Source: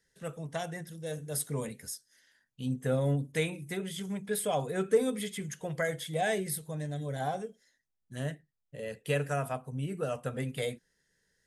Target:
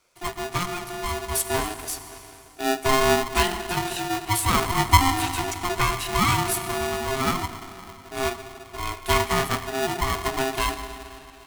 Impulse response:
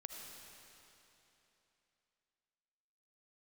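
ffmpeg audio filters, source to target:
-filter_complex "[0:a]asplit=2[s0][s1];[1:a]atrim=start_sample=2205[s2];[s1][s2]afir=irnorm=-1:irlink=0,volume=1.19[s3];[s0][s3]amix=inputs=2:normalize=0,aeval=exprs='val(0)*sgn(sin(2*PI*530*n/s))':c=same,volume=1.68"

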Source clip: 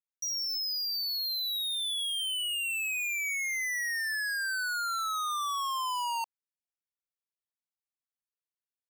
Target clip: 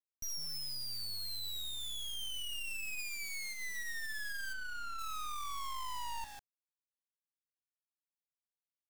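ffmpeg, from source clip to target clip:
-filter_complex "[0:a]asettb=1/sr,asplit=3[s0][s1][s2];[s0]atrim=end=1.694[s3];[s1]atrim=start=1.69:end=2.15,asetpts=PTS-STARTPTS,afade=t=in:d=0.004:c=qsin,afade=t=out:st=0.456:d=0.004:c=qsin,highpass=f=1000:p=1[s4];[s2]atrim=start=2.146[s5];[s3][s4]acrossfade=d=0.004:c1=hsin:c2=qsin[s6];[s6][s5]acrossfade=d=0.004:c1=qsin:c2=hsin,asplit=3[s7][s8][s9];[s7]afade=t=out:st=2.98:d=0.02[s10];[s8]tiltshelf=f=1400:g=-7,afade=t=in:st=2.98:d=0.02,afade=t=out:st=3.52:d=0.02[s11];[s9]afade=t=in:st=3.52:d=0.02[s12];[s10][s11][s12]amix=inputs=3:normalize=0,asplit=4[s13][s14][s15][s16];[s14]adelay=150,afreqshift=-100,volume=0.2[s17];[s15]adelay=300,afreqshift=-200,volume=0.0638[s18];[s16]adelay=450,afreqshift=-300,volume=0.0204[s19];[s13][s17][s18][s19]amix=inputs=4:normalize=0,acompressor=threshold=0.02:ratio=5,acrusher=bits=5:dc=4:mix=0:aa=0.000001,asplit=3[s20][s21][s22];[s20]afade=t=out:st=4.52:d=0.02[s23];[s21]lowpass=f=2700:p=1,afade=t=in:st=4.52:d=0.02,afade=t=out:st=4.98:d=0.02[s24];[s22]afade=t=in:st=4.98:d=0.02[s25];[s23][s24][s25]amix=inputs=3:normalize=0,volume=0.841"

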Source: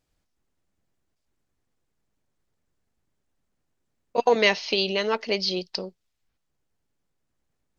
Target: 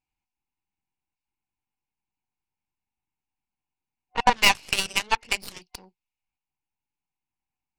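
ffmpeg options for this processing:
-af "asoftclip=type=tanh:threshold=0.15,superequalizer=7b=0.501:8b=0.316:9b=3.55:12b=3.55,aeval=exprs='0.473*(cos(1*acos(clip(val(0)/0.473,-1,1)))-cos(1*PI/2))+0.211*(cos(2*acos(clip(val(0)/0.473,-1,1)))-cos(2*PI/2))+0.00531*(cos(5*acos(clip(val(0)/0.473,-1,1)))-cos(5*PI/2))+0.0841*(cos(7*acos(clip(val(0)/0.473,-1,1)))-cos(7*PI/2))':c=same"

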